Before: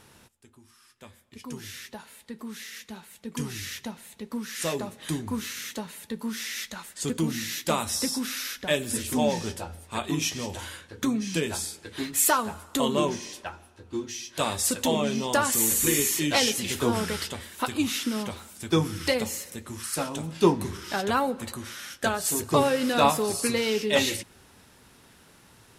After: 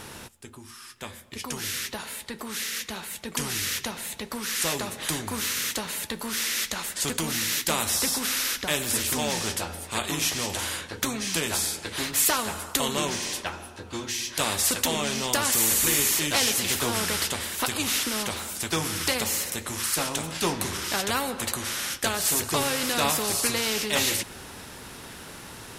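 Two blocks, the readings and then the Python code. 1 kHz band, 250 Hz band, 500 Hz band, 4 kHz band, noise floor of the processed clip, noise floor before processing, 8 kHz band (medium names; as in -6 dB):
-1.5 dB, -4.5 dB, -4.5 dB, +4.5 dB, -45 dBFS, -57 dBFS, +4.5 dB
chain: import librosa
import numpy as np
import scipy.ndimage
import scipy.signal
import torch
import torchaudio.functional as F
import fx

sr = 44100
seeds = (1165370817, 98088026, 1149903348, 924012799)

y = fx.spectral_comp(x, sr, ratio=2.0)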